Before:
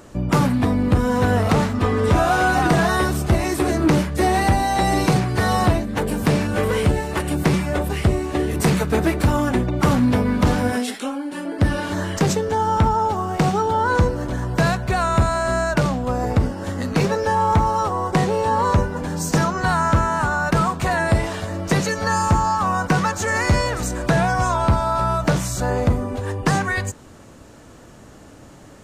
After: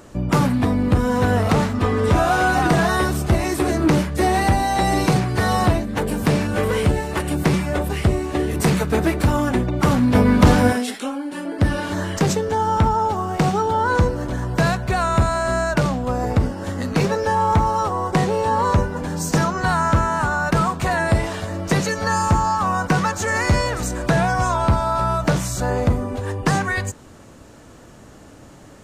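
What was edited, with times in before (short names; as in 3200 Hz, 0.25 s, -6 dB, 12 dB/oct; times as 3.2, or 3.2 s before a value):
10.15–10.73 gain +5 dB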